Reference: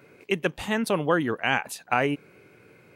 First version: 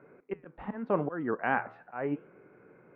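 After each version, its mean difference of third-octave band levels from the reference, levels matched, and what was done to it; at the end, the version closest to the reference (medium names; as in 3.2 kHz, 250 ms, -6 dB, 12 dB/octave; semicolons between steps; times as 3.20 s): 8.0 dB: slow attack 250 ms; low-pass 1.6 kHz 24 dB/octave; peaking EQ 94 Hz -13.5 dB 0.67 oct; flange 0.88 Hz, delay 6.3 ms, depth 7.2 ms, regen -85%; trim +3 dB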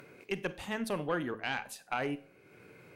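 4.5 dB: de-hum 109.4 Hz, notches 7; upward compressor, threshold -37 dBFS; valve stage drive 11 dB, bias 0.35; Schroeder reverb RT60 0.34 s, combs from 31 ms, DRR 15 dB; trim -8 dB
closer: second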